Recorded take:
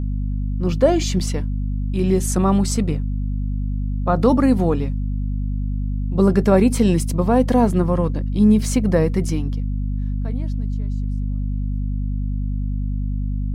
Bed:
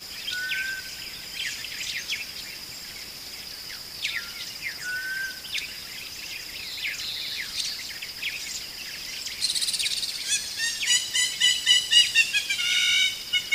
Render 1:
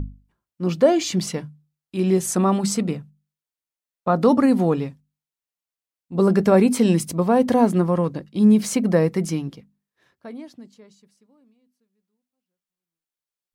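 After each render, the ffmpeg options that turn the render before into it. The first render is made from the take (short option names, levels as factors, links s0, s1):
-af "bandreject=f=50:t=h:w=6,bandreject=f=100:t=h:w=6,bandreject=f=150:t=h:w=6,bandreject=f=200:t=h:w=6,bandreject=f=250:t=h:w=6"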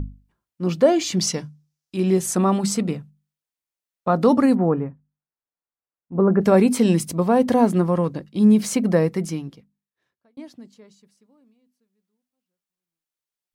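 -filter_complex "[0:a]asettb=1/sr,asplit=3[s0][s1][s2];[s0]atrim=end=1.204[s3];[s1]atrim=start=1.2:end=1.96,asetpts=PTS-STARTPTS,afade=t=in:d=0.004:c=qsin,afade=t=out:st=0.756:d=0.004:c=qsin,equalizer=f=5700:t=o:w=0.77:g=11[s4];[s2]atrim=start=1.956[s5];[s3][s4]acrossfade=d=0.004:c1=hsin:c2=qsin[s6];[s6][s5]acrossfade=d=0.004:c1=qsin:c2=hsin,asplit=3[s7][s8][s9];[s7]afade=t=out:st=4.54:d=0.02[s10];[s8]lowpass=f=1700:w=0.5412,lowpass=f=1700:w=1.3066,afade=t=in:st=4.54:d=0.02,afade=t=out:st=6.4:d=0.02[s11];[s9]afade=t=in:st=6.4:d=0.02[s12];[s10][s11][s12]amix=inputs=3:normalize=0,asplit=2[s13][s14];[s13]atrim=end=10.37,asetpts=PTS-STARTPTS,afade=t=out:st=8.93:d=1.44[s15];[s14]atrim=start=10.37,asetpts=PTS-STARTPTS,afade=t=in:d=0.004:c=hsin[s16];[s15][s16]concat=n=2:v=0:a=1"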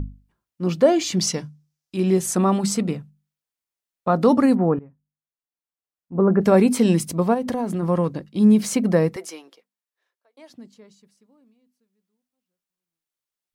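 -filter_complex "[0:a]asplit=3[s0][s1][s2];[s0]afade=t=out:st=7.33:d=0.02[s3];[s1]acompressor=threshold=0.0891:ratio=6:attack=3.2:release=140:knee=1:detection=peak,afade=t=in:st=7.33:d=0.02,afade=t=out:st=7.82:d=0.02[s4];[s2]afade=t=in:st=7.82:d=0.02[s5];[s3][s4][s5]amix=inputs=3:normalize=0,asettb=1/sr,asplit=3[s6][s7][s8];[s6]atrim=end=9.164[s9];[s7]atrim=start=9.16:end=10.5,asetpts=PTS-STARTPTS,afade=t=in:d=0.004:c=qsin,afade=t=out:st=1.336:d=0.004:c=qsin,highpass=f=440:w=0.5412,highpass=f=440:w=1.3066[s10];[s8]atrim=start=10.496[s11];[s9][s10]acrossfade=d=0.004:c1=hsin:c2=qsin[s12];[s12][s11]acrossfade=d=0.004:c1=qsin:c2=hsin,asplit=2[s13][s14];[s13]atrim=end=4.79,asetpts=PTS-STARTPTS,afade=t=out:st=4.786:d=0.004:c=hsin:silence=0.11885[s15];[s14]atrim=start=4.79,asetpts=PTS-STARTPTS,afade=t=in:d=1.49:silence=0.11885[s16];[s15][s16]concat=n=2:v=0:a=1"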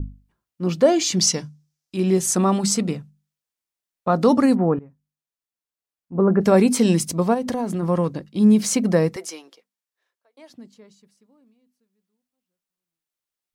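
-af "adynamicequalizer=threshold=0.00794:dfrequency=6100:dqfactor=0.91:tfrequency=6100:tqfactor=0.91:attack=5:release=100:ratio=0.375:range=3:mode=boostabove:tftype=bell"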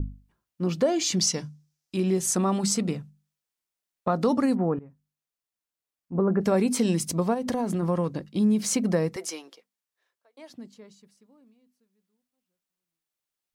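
-af "acompressor=threshold=0.0562:ratio=2"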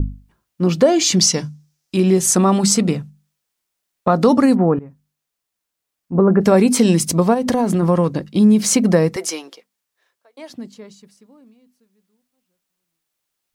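-af "volume=3.16,alimiter=limit=0.794:level=0:latency=1"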